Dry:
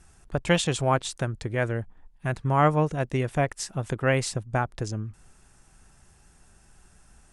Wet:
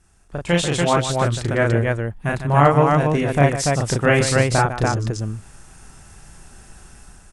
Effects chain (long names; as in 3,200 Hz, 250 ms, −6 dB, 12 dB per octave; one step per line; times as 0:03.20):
automatic gain control gain up to 13 dB
on a send: loudspeakers that aren't time-aligned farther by 12 metres −2 dB, 52 metres −10 dB, 99 metres −2 dB
0:00.81–0:01.67: on the sum: highs frequency-modulated by the lows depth 0.2 ms
level −4 dB